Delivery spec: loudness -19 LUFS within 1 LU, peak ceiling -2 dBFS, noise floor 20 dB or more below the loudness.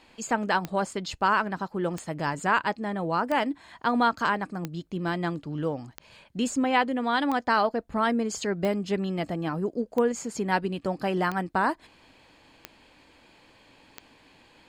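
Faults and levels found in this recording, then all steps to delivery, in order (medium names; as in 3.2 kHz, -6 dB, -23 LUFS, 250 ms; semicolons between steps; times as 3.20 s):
clicks found 11; loudness -27.5 LUFS; peak level -11.0 dBFS; loudness target -19.0 LUFS
-> de-click; trim +8.5 dB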